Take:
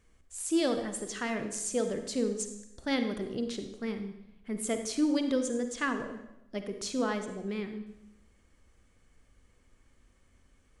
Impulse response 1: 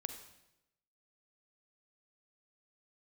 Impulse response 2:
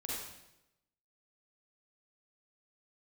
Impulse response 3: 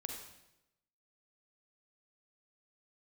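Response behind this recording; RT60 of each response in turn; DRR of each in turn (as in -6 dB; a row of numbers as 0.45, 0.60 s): 1; 0.90, 0.90, 0.90 s; 7.0, -6.0, 2.0 dB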